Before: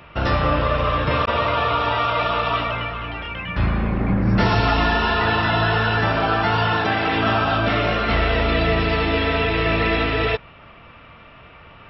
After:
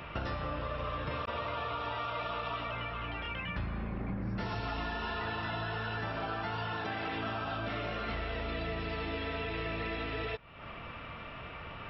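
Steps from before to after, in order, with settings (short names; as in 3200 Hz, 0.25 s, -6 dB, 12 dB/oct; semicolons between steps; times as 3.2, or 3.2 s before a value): compressor 5:1, threshold -36 dBFS, peak gain reduction 20 dB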